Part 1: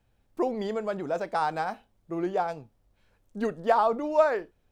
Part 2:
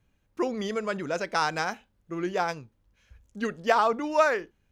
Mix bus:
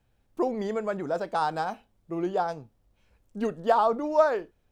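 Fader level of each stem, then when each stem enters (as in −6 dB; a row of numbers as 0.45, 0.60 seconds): −0.5, −14.5 decibels; 0.00, 0.00 seconds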